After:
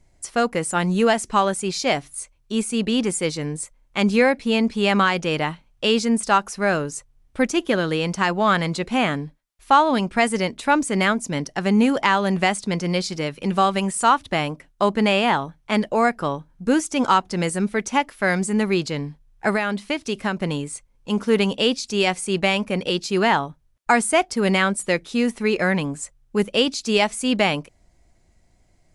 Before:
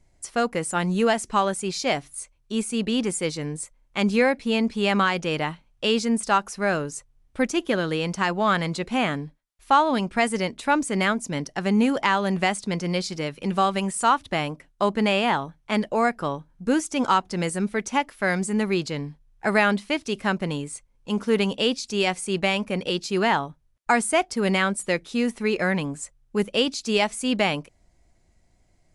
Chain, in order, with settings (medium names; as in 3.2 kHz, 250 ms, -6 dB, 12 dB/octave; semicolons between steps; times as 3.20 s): 19.50–20.37 s: compression 6:1, threshold -22 dBFS, peak gain reduction 7.5 dB; trim +3 dB